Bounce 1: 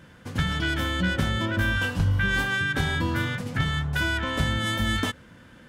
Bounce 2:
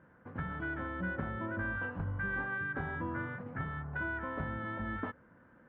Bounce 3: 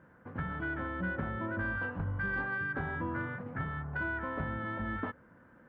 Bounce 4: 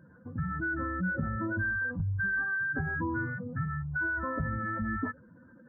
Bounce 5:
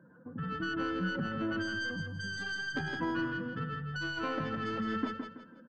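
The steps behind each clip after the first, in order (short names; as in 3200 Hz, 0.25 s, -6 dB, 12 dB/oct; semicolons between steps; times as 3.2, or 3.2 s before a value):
LPF 1600 Hz 24 dB/oct; low shelf 180 Hz -9.5 dB; gain -7.5 dB
soft clip -22 dBFS, distortion -31 dB; gain +2 dB
spectral contrast raised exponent 2.2; gain +4 dB
tracing distortion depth 0.31 ms; three-band isolator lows -22 dB, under 150 Hz, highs -15 dB, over 2000 Hz; feedback echo 0.164 s, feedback 33%, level -6 dB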